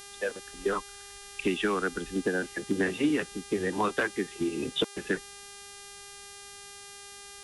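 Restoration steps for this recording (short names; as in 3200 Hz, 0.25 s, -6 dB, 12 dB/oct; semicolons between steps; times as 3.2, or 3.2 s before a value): clip repair -17.5 dBFS; de-hum 401.7 Hz, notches 28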